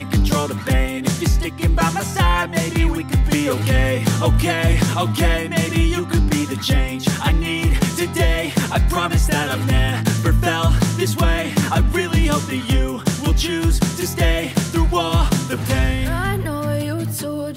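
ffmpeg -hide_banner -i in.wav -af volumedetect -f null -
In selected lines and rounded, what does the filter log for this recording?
mean_volume: -17.5 dB
max_volume: -6.3 dB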